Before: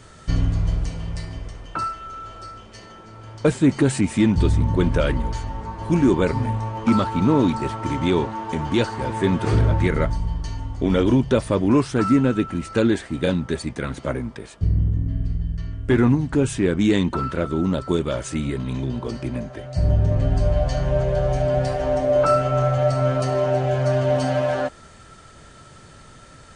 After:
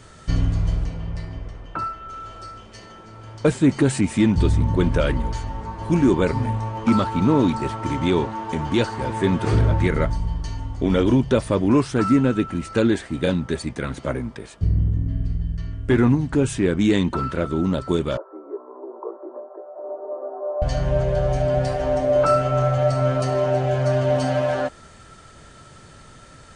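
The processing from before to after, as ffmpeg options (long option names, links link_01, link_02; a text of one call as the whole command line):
ffmpeg -i in.wav -filter_complex "[0:a]asettb=1/sr,asplit=3[link_01][link_02][link_03];[link_01]atrim=end=0.844[link_04];[link_02]atrim=start=0.84:end=2.09,asetpts=PTS-STARTPTS,afade=type=in:duration=0.004:curve=qsin,afade=type=out:start_time=1.246:duration=0.004:curve=qsin,aemphasis=mode=reproduction:type=75kf[link_05];[link_03]atrim=start=2.086[link_06];[link_04][link_05]acrossfade=duration=0.004:curve1=hsin:curve2=qsin[link_07];[link_07][link_06]acrossfade=duration=0.004:curve1=qsin:curve2=hsin,asettb=1/sr,asplit=3[link_08][link_09][link_10];[link_08]atrim=end=18.174[link_11];[link_09]atrim=start=18.17:end=20.62,asetpts=PTS-STARTPTS,afade=type=in:duration=0.004:curve=qsin,afade=type=out:start_time=2.446:duration=0.004:curve=qsin,asuperpass=centerf=660:order=12:qfactor=0.73[link_12];[link_10]atrim=start=20.616[link_13];[link_11][link_12]acrossfade=duration=0.004:curve1=hsin:curve2=qsin[link_14];[link_14][link_13]acrossfade=duration=0.004:curve1=qsin:curve2=hsin" out.wav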